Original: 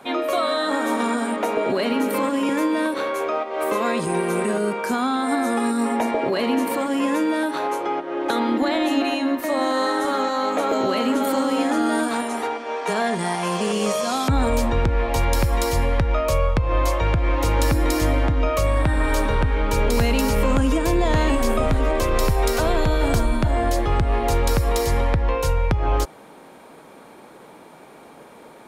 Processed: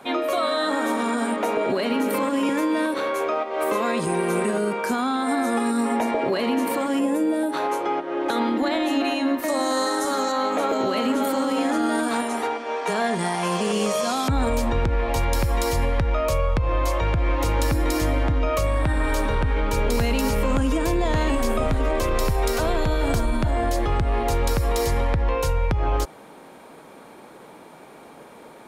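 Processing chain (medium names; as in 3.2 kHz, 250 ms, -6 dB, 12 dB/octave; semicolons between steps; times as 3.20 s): 7.00–7.53 s: time-frequency box 870–7100 Hz -9 dB; 9.48–10.32 s: resonant high shelf 4.2 kHz +8 dB, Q 1.5; peak limiter -14 dBFS, peak gain reduction 3.5 dB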